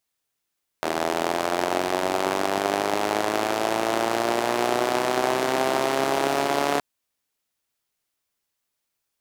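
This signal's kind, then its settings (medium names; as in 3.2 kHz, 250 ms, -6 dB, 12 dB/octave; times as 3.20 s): four-cylinder engine model, changing speed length 5.97 s, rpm 2400, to 4300, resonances 380/640 Hz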